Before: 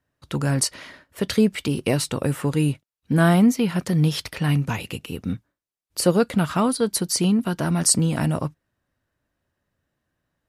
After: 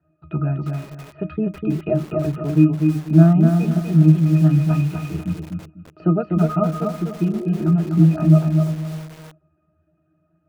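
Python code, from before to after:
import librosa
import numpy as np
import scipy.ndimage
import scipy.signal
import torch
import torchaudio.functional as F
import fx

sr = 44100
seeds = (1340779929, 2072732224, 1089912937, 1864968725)

p1 = fx.law_mismatch(x, sr, coded='mu')
p2 = fx.hum_notches(p1, sr, base_hz=50, count=7)
p3 = fx.dereverb_blind(p2, sr, rt60_s=0.81)
p4 = fx.spec_repair(p3, sr, seeds[0], start_s=7.27, length_s=0.36, low_hz=350.0, high_hz=1600.0, source='before')
p5 = fx.rider(p4, sr, range_db=5, speed_s=2.0)
p6 = p4 + F.gain(torch.from_numpy(p5), -1.0).numpy()
p7 = fx.bandpass_edges(p6, sr, low_hz=130.0, high_hz=2600.0)
p8 = fx.air_absorb(p7, sr, metres=170.0)
p9 = fx.octave_resonator(p8, sr, note='D#', decay_s=0.17)
p10 = fx.echo_feedback(p9, sr, ms=248, feedback_pct=26, wet_db=-4.5)
p11 = fx.echo_crushed(p10, sr, ms=324, feedback_pct=35, bits=6, wet_db=-14.0)
y = F.gain(torch.from_numpy(p11), 8.5).numpy()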